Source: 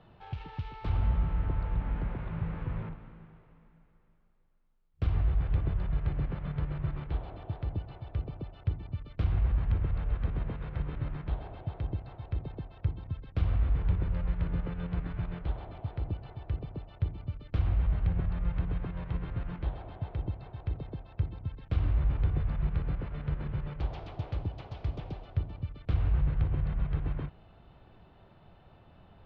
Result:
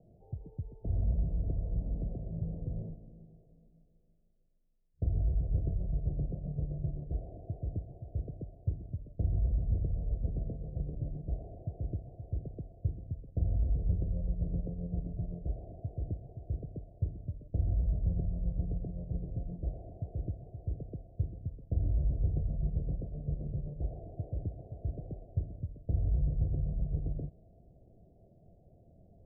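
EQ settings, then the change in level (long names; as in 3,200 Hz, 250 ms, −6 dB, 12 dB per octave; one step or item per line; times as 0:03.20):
Chebyshev low-pass filter 690 Hz, order 6
−2.0 dB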